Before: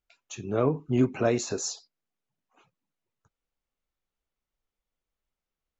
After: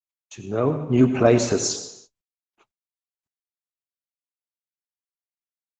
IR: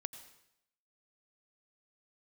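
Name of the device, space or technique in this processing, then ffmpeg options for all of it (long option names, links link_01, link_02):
speakerphone in a meeting room: -filter_complex "[0:a]asettb=1/sr,asplit=3[link_01][link_02][link_03];[link_01]atrim=end=1.234[link_04];[link_02]atrim=start=1.23:end=1.65,asetpts=PTS-STARTPTS,afade=type=in:duration=0.004:curve=qsin,afade=type=out:start_time=0.416:duration=0.004:curve=qsin,adynamicequalizer=threshold=0.00631:dfrequency=6100:dqfactor=0.76:tfrequency=6100:tqfactor=0.76:attack=5:release=100:ratio=0.375:range=1.5:mode=cutabove:tftype=bell[link_05];[link_03]atrim=start=1.646[link_06];[link_04][link_05]acrossfade=duration=0.004:curve1=hsin:curve2=qsin[link_07];[link_07][link_06]acrossfade=duration=0.004:curve1=qsin:curve2=hsin[link_08];[1:a]atrim=start_sample=2205[link_09];[link_08][link_09]afir=irnorm=-1:irlink=0,dynaudnorm=framelen=430:gausssize=5:maxgain=11dB,agate=range=-50dB:threshold=-51dB:ratio=16:detection=peak,volume=3dB" -ar 48000 -c:a libopus -b:a 16k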